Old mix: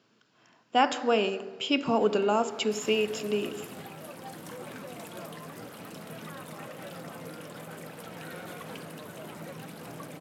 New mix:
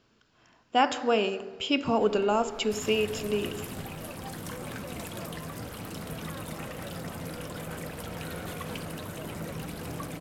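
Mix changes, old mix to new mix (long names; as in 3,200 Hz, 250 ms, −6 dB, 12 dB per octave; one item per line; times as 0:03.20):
second sound +5.5 dB
master: remove high-pass filter 130 Hz 24 dB per octave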